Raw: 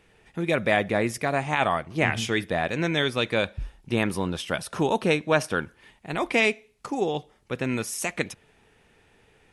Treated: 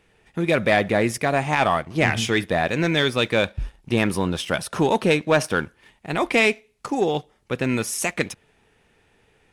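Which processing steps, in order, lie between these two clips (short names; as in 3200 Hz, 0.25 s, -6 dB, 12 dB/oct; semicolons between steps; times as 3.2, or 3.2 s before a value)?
sample leveller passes 1; gain +1 dB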